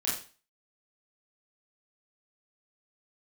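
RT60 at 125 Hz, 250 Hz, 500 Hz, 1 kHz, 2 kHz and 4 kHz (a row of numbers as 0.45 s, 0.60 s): 0.35 s, 0.40 s, 0.35 s, 0.35 s, 0.40 s, 0.40 s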